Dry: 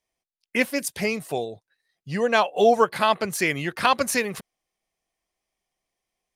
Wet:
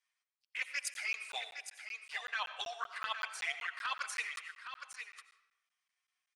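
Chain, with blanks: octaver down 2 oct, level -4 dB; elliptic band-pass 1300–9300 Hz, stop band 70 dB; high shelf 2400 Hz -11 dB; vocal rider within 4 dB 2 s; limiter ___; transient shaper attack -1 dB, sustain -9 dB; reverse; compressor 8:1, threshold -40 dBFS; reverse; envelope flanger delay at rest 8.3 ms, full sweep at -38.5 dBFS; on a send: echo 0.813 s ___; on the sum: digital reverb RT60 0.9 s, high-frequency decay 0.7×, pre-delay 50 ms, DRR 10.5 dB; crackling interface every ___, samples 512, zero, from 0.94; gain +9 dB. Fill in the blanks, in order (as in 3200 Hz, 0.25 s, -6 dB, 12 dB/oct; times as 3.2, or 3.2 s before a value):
-16.5 dBFS, -8.5 dB, 0.19 s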